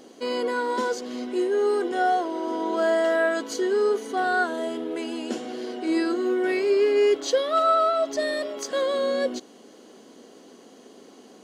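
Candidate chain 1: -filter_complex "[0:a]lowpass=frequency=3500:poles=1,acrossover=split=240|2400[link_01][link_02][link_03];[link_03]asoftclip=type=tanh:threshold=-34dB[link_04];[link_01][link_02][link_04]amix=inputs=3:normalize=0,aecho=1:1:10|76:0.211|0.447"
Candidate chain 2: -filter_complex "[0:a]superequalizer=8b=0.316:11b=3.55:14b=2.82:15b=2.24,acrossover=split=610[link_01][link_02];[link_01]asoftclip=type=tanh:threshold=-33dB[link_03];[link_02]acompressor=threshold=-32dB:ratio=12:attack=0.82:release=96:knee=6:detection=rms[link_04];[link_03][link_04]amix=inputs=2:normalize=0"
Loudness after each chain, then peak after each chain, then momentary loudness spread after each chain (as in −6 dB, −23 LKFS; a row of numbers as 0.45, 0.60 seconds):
−24.0, −33.0 LKFS; −10.5, −24.0 dBFS; 11, 15 LU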